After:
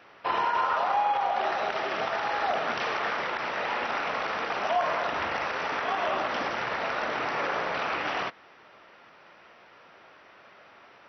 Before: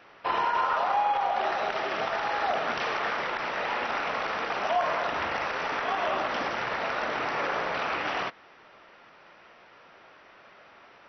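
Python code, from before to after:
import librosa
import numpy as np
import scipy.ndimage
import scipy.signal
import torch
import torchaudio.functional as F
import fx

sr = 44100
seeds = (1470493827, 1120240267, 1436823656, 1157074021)

y = scipy.signal.sosfilt(scipy.signal.butter(2, 50.0, 'highpass', fs=sr, output='sos'), x)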